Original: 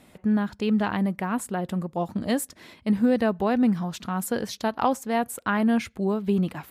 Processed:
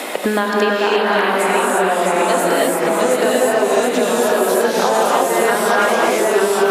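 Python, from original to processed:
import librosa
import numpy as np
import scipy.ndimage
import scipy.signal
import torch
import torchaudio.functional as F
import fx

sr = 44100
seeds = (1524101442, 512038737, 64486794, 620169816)

p1 = scipy.signal.sosfilt(scipy.signal.butter(4, 360.0, 'highpass', fs=sr, output='sos'), x)
p2 = fx.rev_gated(p1, sr, seeds[0], gate_ms=370, shape='rising', drr_db=-8.0)
p3 = fx.echo_pitch(p2, sr, ms=571, semitones=-1, count=3, db_per_echo=-3.0)
p4 = p3 + fx.echo_single(p3, sr, ms=219, db=-11.0, dry=0)
p5 = fx.band_squash(p4, sr, depth_pct=100)
y = F.gain(torch.from_numpy(p5), 2.5).numpy()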